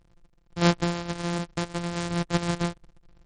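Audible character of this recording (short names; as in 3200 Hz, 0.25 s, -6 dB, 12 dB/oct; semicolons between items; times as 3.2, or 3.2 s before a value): a buzz of ramps at a fixed pitch in blocks of 256 samples; random-step tremolo 3.8 Hz, depth 55%; MP3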